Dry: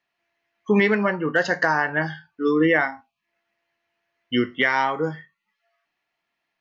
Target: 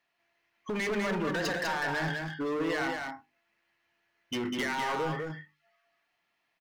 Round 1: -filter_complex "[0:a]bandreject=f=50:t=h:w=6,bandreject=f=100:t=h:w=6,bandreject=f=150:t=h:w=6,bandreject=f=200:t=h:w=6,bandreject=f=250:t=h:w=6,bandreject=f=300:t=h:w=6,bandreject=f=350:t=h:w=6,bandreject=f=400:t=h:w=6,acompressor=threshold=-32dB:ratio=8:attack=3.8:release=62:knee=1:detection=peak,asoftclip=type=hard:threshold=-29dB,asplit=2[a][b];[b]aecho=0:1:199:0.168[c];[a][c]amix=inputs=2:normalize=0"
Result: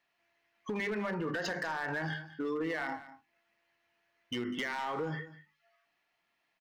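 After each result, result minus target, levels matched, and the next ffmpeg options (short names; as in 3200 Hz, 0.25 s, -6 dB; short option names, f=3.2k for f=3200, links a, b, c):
echo-to-direct -11 dB; compressor: peak gain reduction +6.5 dB
-filter_complex "[0:a]bandreject=f=50:t=h:w=6,bandreject=f=100:t=h:w=6,bandreject=f=150:t=h:w=6,bandreject=f=200:t=h:w=6,bandreject=f=250:t=h:w=6,bandreject=f=300:t=h:w=6,bandreject=f=350:t=h:w=6,bandreject=f=400:t=h:w=6,acompressor=threshold=-32dB:ratio=8:attack=3.8:release=62:knee=1:detection=peak,asoftclip=type=hard:threshold=-29dB,asplit=2[a][b];[b]aecho=0:1:199:0.596[c];[a][c]amix=inputs=2:normalize=0"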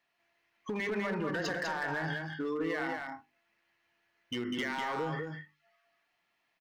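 compressor: peak gain reduction +6.5 dB
-filter_complex "[0:a]bandreject=f=50:t=h:w=6,bandreject=f=100:t=h:w=6,bandreject=f=150:t=h:w=6,bandreject=f=200:t=h:w=6,bandreject=f=250:t=h:w=6,bandreject=f=300:t=h:w=6,bandreject=f=350:t=h:w=6,bandreject=f=400:t=h:w=6,acompressor=threshold=-24.5dB:ratio=8:attack=3.8:release=62:knee=1:detection=peak,asoftclip=type=hard:threshold=-29dB,asplit=2[a][b];[b]aecho=0:1:199:0.596[c];[a][c]amix=inputs=2:normalize=0"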